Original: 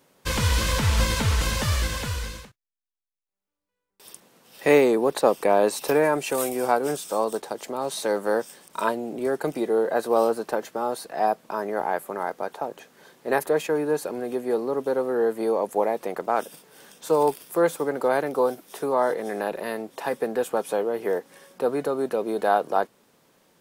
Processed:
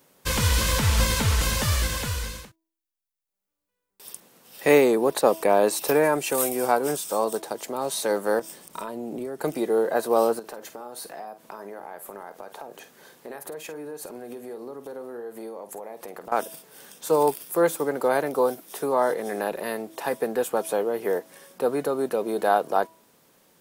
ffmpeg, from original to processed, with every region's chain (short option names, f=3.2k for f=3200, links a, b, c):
-filter_complex "[0:a]asettb=1/sr,asplit=3[a][b][c];[a]atrim=end=8.394[d];[b]atrim=start=8.39:end=9.43,asetpts=PTS-STARTPTS,afade=t=in:d=0.004:c=qsin,afade=t=out:st=1.036:d=0.004:c=qsin,lowshelf=f=380:g=6.5,bandreject=f=1.6k:w=20,acompressor=threshold=-28dB:ratio=16:attack=3.2:release=140:knee=1:detection=peak[e];[c]atrim=start=9.426[f];[d][e]acrossfade=d=0.004:c1=hsin:c2=qsin[g];[g][f]acrossfade=d=0.004:c1=qsin:c2=hsin,asettb=1/sr,asplit=3[h][i][j];[h]atrim=end=10.394[k];[i]atrim=start=10.39:end=16.32,asetpts=PTS-STARTPTS,afade=t=in:d=0.004:c=qsin,afade=t=out:st=5.926:d=0.004:c=qsin,acompressor=threshold=-35dB:ratio=6:attack=3.2:release=140:knee=1:detection=peak,asplit=2[l][m];[m]adelay=50,volume=-11.5dB[n];[l][n]amix=inputs=2:normalize=0,atrim=end_sample=261513[o];[j]atrim=start=16.316[p];[k][o]acrossfade=d=0.004:c1=hsin:c2=qsin[q];[q][p]acrossfade=d=0.004:c1=qsin:c2=hsin,highshelf=f=8.9k:g=8.5,bandreject=f=325.8:t=h:w=4,bandreject=f=651.6:t=h:w=4,bandreject=f=977.4:t=h:w=4"